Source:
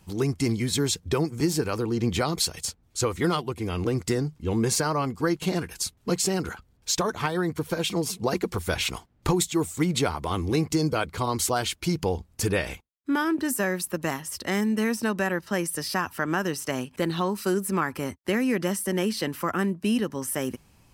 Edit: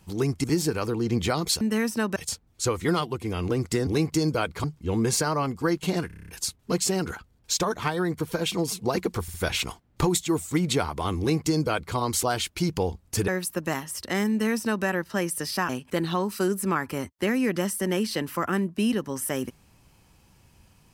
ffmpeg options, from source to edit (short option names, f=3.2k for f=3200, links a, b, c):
-filter_complex "[0:a]asplit=17[a][b][c][d][e][f][g][h][i][j][k][l][m][n][o][p][q];[a]atrim=end=0.442[r];[b]atrim=start=1.348:end=2.522[s];[c]atrim=start=14.668:end=15.222[t];[d]atrim=start=2.518:end=4.232[u];[e]atrim=start=10.448:end=11.222[v];[f]atrim=start=4.228:end=5.692[w];[g]atrim=start=5.658:end=5.692[x];[h]atrim=start=5.658:end=5.692[y];[i]atrim=start=5.658:end=5.692[z];[j]atrim=start=5.658:end=5.692[aa];[k]atrim=start=5.658:end=5.692[ab];[l]atrim=start=5.658:end=5.692[ac];[m]atrim=start=5.658:end=8.662[ad];[n]atrim=start=8.598:end=8.662[ae];[o]atrim=start=8.598:end=12.542[af];[p]atrim=start=13.648:end=16.062[ag];[q]atrim=start=16.748[ah];[r][s]acrossfade=d=0.004:c1=hsin:c2=hsin[ai];[ai][t]acrossfade=d=0.004:c1=hsin:c2=hsin[aj];[aj][u]acrossfade=d=0.004:c1=hsin:c2=hsin[ak];[ak][v]acrossfade=d=0.004:c1=hsin:c2=hsin[al];[al][w]acrossfade=d=0.004:c1=hsin:c2=hsin[am];[am][x]acrossfade=d=0.004:c1=hsin:c2=hsin[an];[an][y]acrossfade=d=0.004:c1=hsin:c2=hsin[ao];[ao][z]acrossfade=d=0.004:c1=hsin:c2=hsin[ap];[ap][aa]acrossfade=d=0.004:c1=hsin:c2=hsin[aq];[aq][ab]acrossfade=d=0.004:c1=hsin:c2=hsin[ar];[ar][ac]acrossfade=d=0.004:c1=hsin:c2=hsin[as];[as][ad]acrossfade=d=0.004:c1=hsin:c2=hsin[at];[at][ae]acrossfade=d=0.004:c1=hsin:c2=hsin[au];[au][af]acrossfade=d=0.004:c1=hsin:c2=hsin[av];[av][ag]acrossfade=d=0.004:c1=hsin:c2=hsin[aw];[aw][ah]acrossfade=d=0.004:c1=hsin:c2=hsin"